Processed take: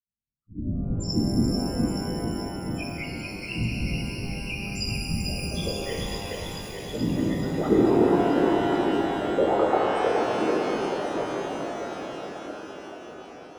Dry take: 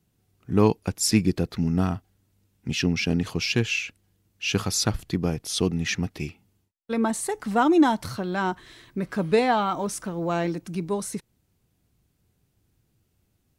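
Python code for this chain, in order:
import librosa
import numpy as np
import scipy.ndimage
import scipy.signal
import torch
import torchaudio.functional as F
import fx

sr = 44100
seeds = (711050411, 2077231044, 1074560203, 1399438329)

y = fx.bin_expand(x, sr, power=1.5)
y = scipy.signal.sosfilt(scipy.signal.butter(2, 8100.0, 'lowpass', fs=sr, output='sos'), y)
y = fx.stiff_resonator(y, sr, f0_hz=110.0, decay_s=0.49, stiffness=0.008)
y = fx.spec_topn(y, sr, count=2)
y = fx.doubler(y, sr, ms=15.0, db=-3)
y = fx.echo_alternate(y, sr, ms=218, hz=1300.0, feedback_pct=84, wet_db=-2.0)
y = fx.whisperise(y, sr, seeds[0])
y = fx.rev_shimmer(y, sr, seeds[1], rt60_s=3.3, semitones=12, shimmer_db=-8, drr_db=-2.0)
y = F.gain(torch.from_numpy(y), 6.5).numpy()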